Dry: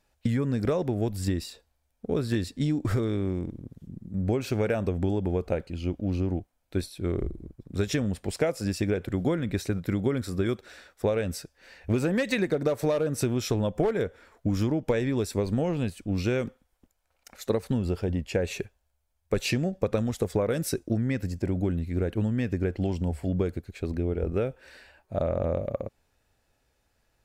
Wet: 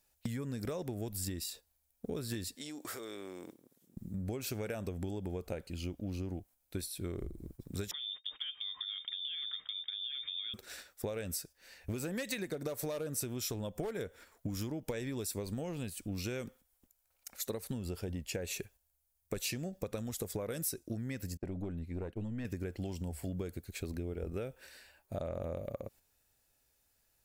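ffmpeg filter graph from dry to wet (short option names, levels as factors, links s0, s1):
-filter_complex "[0:a]asettb=1/sr,asplit=3[s0][s1][s2];[s0]atrim=end=2.554[s3];[s1]atrim=start=2.55:end=3.97,asetpts=PTS-STARTPTS,afade=t=in:d=0.004:c=qsin,afade=t=out:st=1.416:d=0.004:c=qsin,highpass=480,acompressor=threshold=0.01:ratio=3:attack=3.2:release=140:knee=1:detection=peak[s4];[s2]atrim=start=3.966[s5];[s3][s4]acrossfade=d=0.004:c1=hsin:c2=qsin[s6];[s6][s5]acrossfade=d=0.004:c1=qsin:c2=hsin,asettb=1/sr,asplit=3[s7][s8][s9];[s7]atrim=end=7.914[s10];[s8]atrim=start=7.91:end=10.54,asetpts=PTS-STARTPTS,afade=t=in:d=0.004:c=qsin,afade=t=out:st=2.626:d=0.004:c=qsin,agate=range=0.0224:threshold=0.0158:ratio=3:release=100:detection=peak,acompressor=threshold=0.02:ratio=12:attack=3.2:release=140:knee=1:detection=peak,lowpass=f=3100:t=q:w=0.5098,lowpass=f=3100:t=q:w=0.6013,lowpass=f=3100:t=q:w=0.9,lowpass=f=3100:t=q:w=2.563,afreqshift=-3700[s11];[s9]atrim=start=10.536[s12];[s10][s11]acrossfade=d=0.004:c1=hsin:c2=qsin[s13];[s13][s12]acrossfade=d=0.004:c1=qsin:c2=hsin,asettb=1/sr,asplit=3[s14][s15][s16];[s14]atrim=end=21.374[s17];[s15]atrim=start=21.37:end=22.45,asetpts=PTS-STARTPTS,afade=t=in:d=0.004:c=qsin,afade=t=out:st=1.076:d=0.004:c=qsin,agate=range=0.0224:threshold=0.0251:ratio=3:release=100:detection=peak,lowpass=f=1900:p=1,aeval=exprs='(tanh(8.91*val(0)+0.55)-tanh(0.55))/8.91':c=same[s18];[s16]atrim=start=22.446[s19];[s17][s18]acrossfade=d=0.004:c1=hsin:c2=qsin[s20];[s20][s19]acrossfade=d=0.004:c1=qsin:c2=hsin,agate=range=0.447:threshold=0.00398:ratio=16:detection=peak,aemphasis=mode=production:type=75fm,acompressor=threshold=0.0141:ratio=3,volume=0.841"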